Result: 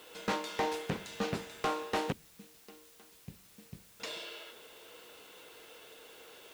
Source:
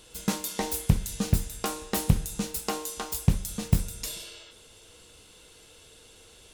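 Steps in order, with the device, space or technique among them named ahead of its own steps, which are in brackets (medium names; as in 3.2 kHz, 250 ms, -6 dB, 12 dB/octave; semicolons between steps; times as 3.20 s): 2.12–4.00 s: amplifier tone stack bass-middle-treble 10-0-1; aircraft radio (band-pass 380–2600 Hz; hard clipper -31 dBFS, distortion -8 dB; white noise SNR 20 dB); trim +4.5 dB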